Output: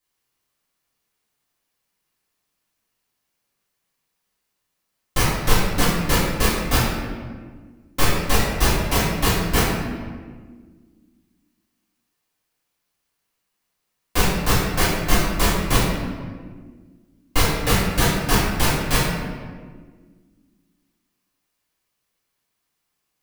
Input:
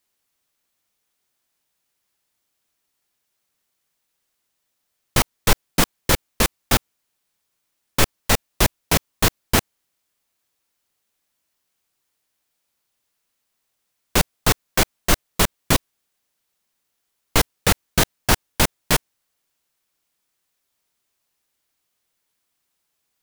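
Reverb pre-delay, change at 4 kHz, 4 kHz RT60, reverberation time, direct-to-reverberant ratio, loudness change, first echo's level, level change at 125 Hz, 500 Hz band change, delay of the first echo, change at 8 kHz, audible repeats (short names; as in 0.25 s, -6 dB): 3 ms, -0.5 dB, 1.0 s, 1.6 s, -10.0 dB, 0.0 dB, none, +3.5 dB, +1.5 dB, none, -2.0 dB, none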